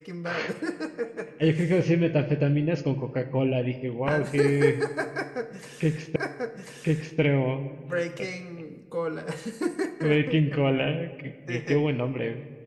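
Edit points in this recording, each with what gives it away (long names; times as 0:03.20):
0:06.16: the same again, the last 1.04 s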